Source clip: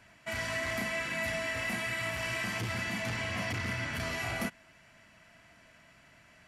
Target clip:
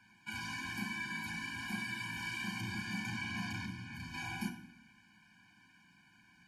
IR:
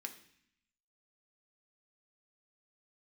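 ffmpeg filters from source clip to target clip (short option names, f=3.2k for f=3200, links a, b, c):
-filter_complex "[0:a]asettb=1/sr,asplit=3[a][b][c];[a]atrim=end=3.654[d];[b]atrim=start=3.65:end=4.14,asetpts=PTS-STARTPTS,afade=t=in:d=0.004:c=qsin,afade=t=out:st=0.486:d=0.004:c=qsin,acrossover=split=150[e][f];[f]acompressor=threshold=-42dB:ratio=4[g];[e][g]amix=inputs=2:normalize=0[h];[c]atrim=start=4.136[i];[d][h]acrossfade=d=0.004:c1=hsin:c2=qsin[j];[j][i]acrossfade=d=0.004:c1=qsin:c2=hsin[k];[1:a]atrim=start_sample=2205,asetrate=40572,aresample=44100[l];[k][l]afir=irnorm=-1:irlink=0,afftfilt=real='re*eq(mod(floor(b*sr/1024/360),2),0)':imag='im*eq(mod(floor(b*sr/1024/360),2),0)':win_size=1024:overlap=0.75"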